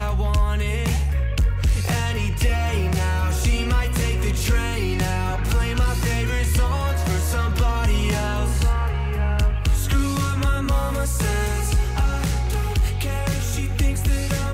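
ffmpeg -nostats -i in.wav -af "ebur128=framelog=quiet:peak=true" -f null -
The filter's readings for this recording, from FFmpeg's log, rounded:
Integrated loudness:
  I:         -22.4 LUFS
  Threshold: -32.4 LUFS
Loudness range:
  LRA:         0.9 LU
  Threshold: -42.3 LUFS
  LRA low:   -22.9 LUFS
  LRA high:  -22.0 LUFS
True peak:
  Peak:       -9.8 dBFS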